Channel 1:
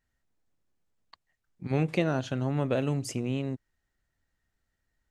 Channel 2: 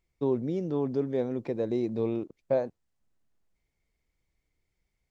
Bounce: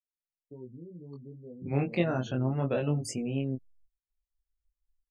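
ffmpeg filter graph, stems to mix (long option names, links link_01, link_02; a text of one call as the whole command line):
ffmpeg -i stem1.wav -i stem2.wav -filter_complex "[0:a]volume=1.5dB[link_01];[1:a]lowpass=frequency=1200:poles=1,asubboost=boost=9:cutoff=180,acompressor=threshold=-44dB:ratio=2,adelay=300,volume=-3.5dB[link_02];[link_01][link_02]amix=inputs=2:normalize=0,afftdn=noise_reduction=34:noise_floor=-41,highshelf=frequency=10000:gain=11,flanger=delay=20:depth=3.8:speed=0.66" out.wav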